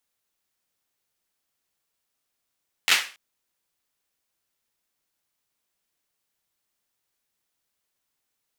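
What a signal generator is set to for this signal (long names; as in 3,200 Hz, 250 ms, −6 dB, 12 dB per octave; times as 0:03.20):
synth clap length 0.28 s, apart 11 ms, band 2,300 Hz, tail 0.36 s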